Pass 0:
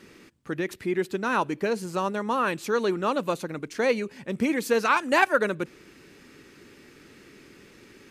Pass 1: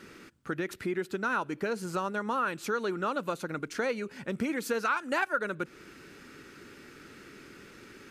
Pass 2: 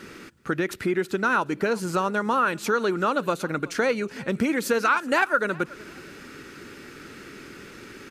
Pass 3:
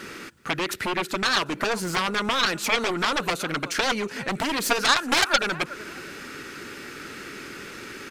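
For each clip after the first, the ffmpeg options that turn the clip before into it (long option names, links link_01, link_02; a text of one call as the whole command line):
ffmpeg -i in.wav -af "equalizer=frequency=1400:width=4.8:gain=9,acompressor=threshold=-31dB:ratio=2.5" out.wav
ffmpeg -i in.wav -af "aecho=1:1:372|744:0.075|0.0217,volume=7.5dB" out.wav
ffmpeg -i in.wav -af "aeval=exprs='0.398*(cos(1*acos(clip(val(0)/0.398,-1,1)))-cos(1*PI/2))+0.0501*(cos(6*acos(clip(val(0)/0.398,-1,1)))-cos(6*PI/2))+0.178*(cos(7*acos(clip(val(0)/0.398,-1,1)))-cos(7*PI/2))':channel_layout=same,lowshelf=frequency=460:gain=-6.5" out.wav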